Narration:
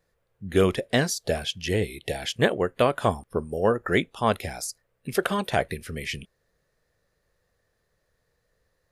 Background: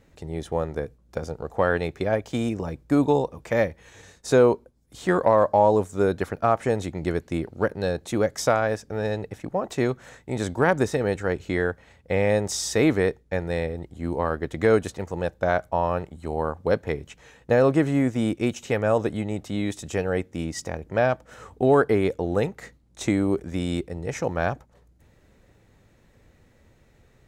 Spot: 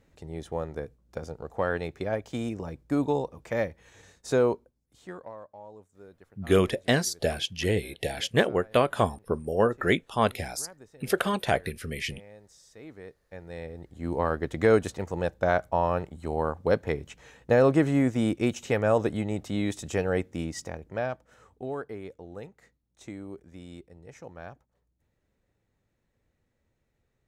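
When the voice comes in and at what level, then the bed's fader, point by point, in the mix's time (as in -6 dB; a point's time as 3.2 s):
5.95 s, -1.0 dB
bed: 4.53 s -6 dB
5.5 s -28.5 dB
12.73 s -28.5 dB
14.17 s -1.5 dB
20.29 s -1.5 dB
21.88 s -18 dB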